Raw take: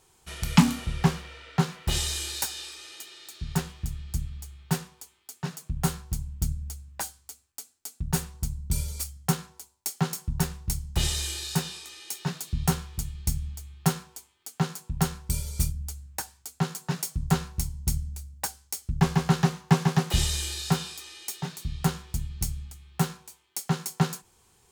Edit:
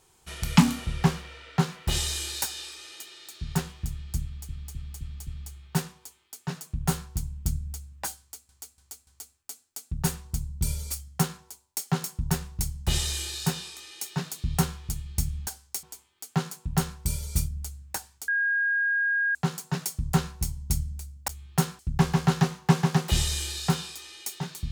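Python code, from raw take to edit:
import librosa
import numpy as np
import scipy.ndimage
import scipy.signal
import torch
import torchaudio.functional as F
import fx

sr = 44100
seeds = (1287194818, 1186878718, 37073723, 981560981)

y = fx.edit(x, sr, fx.repeat(start_s=4.23, length_s=0.26, count=5),
    fx.repeat(start_s=7.16, length_s=0.29, count=4),
    fx.swap(start_s=13.56, length_s=0.51, other_s=18.45, other_length_s=0.36),
    fx.insert_tone(at_s=16.52, length_s=1.07, hz=1630.0, db=-22.0), tone=tone)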